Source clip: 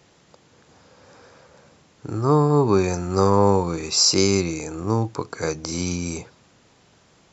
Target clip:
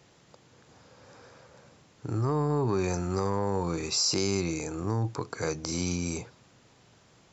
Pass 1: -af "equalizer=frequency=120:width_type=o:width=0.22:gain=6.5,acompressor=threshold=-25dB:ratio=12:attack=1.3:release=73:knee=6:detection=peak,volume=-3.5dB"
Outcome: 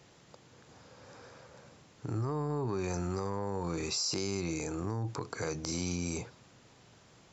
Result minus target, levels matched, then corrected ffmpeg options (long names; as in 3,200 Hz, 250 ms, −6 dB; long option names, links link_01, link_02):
downward compressor: peak gain reduction +7 dB
-af "equalizer=frequency=120:width_type=o:width=0.22:gain=6.5,acompressor=threshold=-17.5dB:ratio=12:attack=1.3:release=73:knee=6:detection=peak,volume=-3.5dB"